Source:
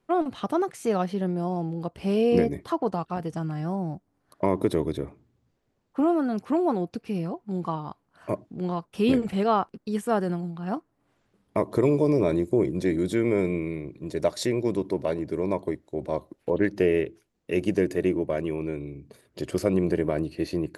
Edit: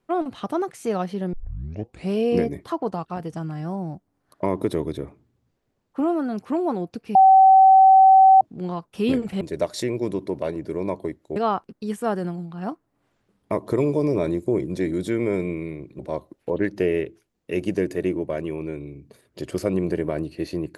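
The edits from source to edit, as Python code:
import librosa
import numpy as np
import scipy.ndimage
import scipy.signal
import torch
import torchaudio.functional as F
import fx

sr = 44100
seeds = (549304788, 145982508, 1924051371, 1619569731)

y = fx.edit(x, sr, fx.tape_start(start_s=1.33, length_s=0.77),
    fx.bleep(start_s=7.15, length_s=1.26, hz=766.0, db=-8.5),
    fx.move(start_s=14.04, length_s=1.95, to_s=9.41), tone=tone)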